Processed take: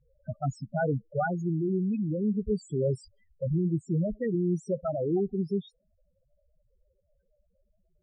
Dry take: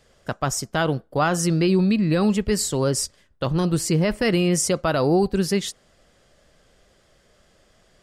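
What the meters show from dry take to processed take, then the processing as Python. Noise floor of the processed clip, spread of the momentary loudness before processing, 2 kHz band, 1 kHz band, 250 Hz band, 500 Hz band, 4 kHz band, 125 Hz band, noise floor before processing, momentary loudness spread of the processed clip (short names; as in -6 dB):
-73 dBFS, 7 LU, -13.0 dB, -10.5 dB, -8.0 dB, -7.5 dB, under -25 dB, -6.5 dB, -60 dBFS, 6 LU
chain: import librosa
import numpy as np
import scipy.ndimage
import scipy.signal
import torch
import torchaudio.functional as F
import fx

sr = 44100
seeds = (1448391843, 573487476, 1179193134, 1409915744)

y = fx.spec_topn(x, sr, count=4)
y = fx.high_shelf_res(y, sr, hz=3500.0, db=-11.0, q=1.5)
y = fx.rider(y, sr, range_db=4, speed_s=0.5)
y = y * librosa.db_to_amplitude(-5.5)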